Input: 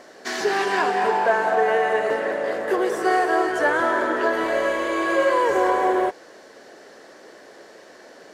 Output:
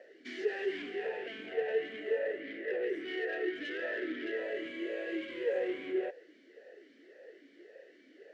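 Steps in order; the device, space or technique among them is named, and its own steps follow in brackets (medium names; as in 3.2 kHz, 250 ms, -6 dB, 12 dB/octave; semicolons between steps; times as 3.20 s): 2.40–4.37 s: graphic EQ 1/2/8 kHz -6/+7/-9 dB; talk box (valve stage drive 21 dB, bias 0.25; talking filter e-i 1.8 Hz)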